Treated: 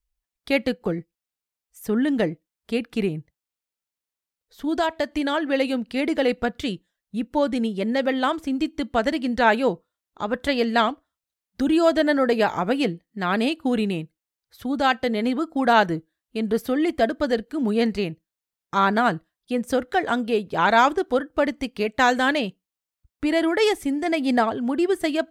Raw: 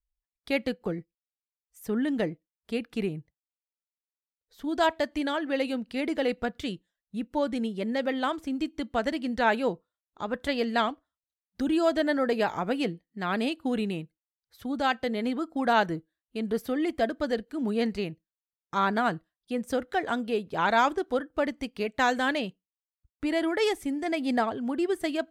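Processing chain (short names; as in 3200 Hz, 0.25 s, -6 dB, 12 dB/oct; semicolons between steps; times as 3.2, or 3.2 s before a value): 4.75–5.32 compressor, threshold -25 dBFS, peak gain reduction 6.5 dB; gain +6 dB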